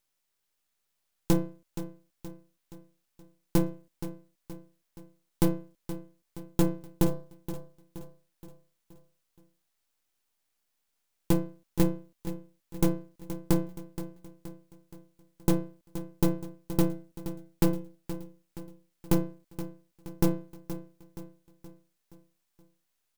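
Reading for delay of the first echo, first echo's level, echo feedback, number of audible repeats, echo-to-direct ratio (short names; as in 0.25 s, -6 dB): 0.473 s, -12.5 dB, 49%, 4, -11.5 dB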